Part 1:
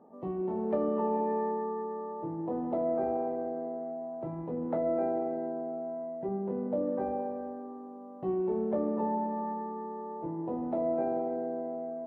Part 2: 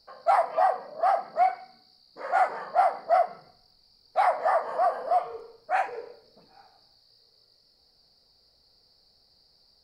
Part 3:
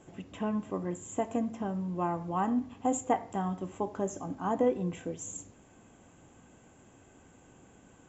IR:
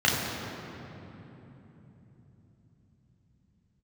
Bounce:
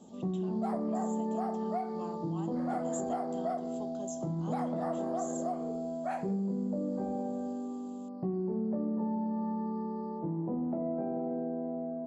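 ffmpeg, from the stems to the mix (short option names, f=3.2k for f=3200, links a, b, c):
-filter_complex "[0:a]lowpass=1.9k,equalizer=f=190:t=o:w=1:g=14.5,volume=-2.5dB[a];[1:a]agate=range=-33dB:threshold=-54dB:ratio=3:detection=peak,equalizer=f=2k:w=0.41:g=-11.5,adelay=350,volume=-1.5dB[b];[2:a]highshelf=f=2.8k:t=q:w=3:g=11,volume=-12.5dB[c];[a][b][c]amix=inputs=3:normalize=0,acompressor=threshold=-31dB:ratio=4"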